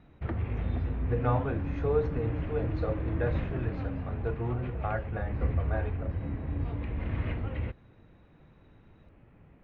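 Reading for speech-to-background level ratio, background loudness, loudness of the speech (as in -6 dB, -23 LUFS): -1.0 dB, -34.0 LUFS, -35.0 LUFS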